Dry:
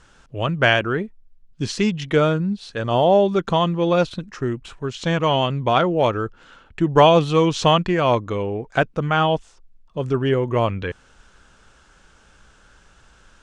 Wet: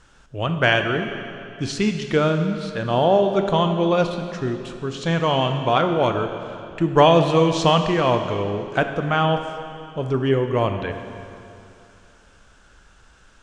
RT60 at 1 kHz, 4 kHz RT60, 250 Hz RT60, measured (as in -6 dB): 2.7 s, 2.5 s, 2.7 s